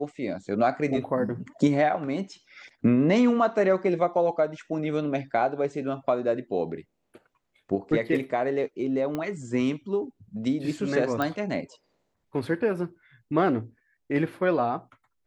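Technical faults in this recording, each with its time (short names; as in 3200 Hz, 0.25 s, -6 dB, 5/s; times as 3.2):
9.15 pop -18 dBFS
11.22 pop -14 dBFS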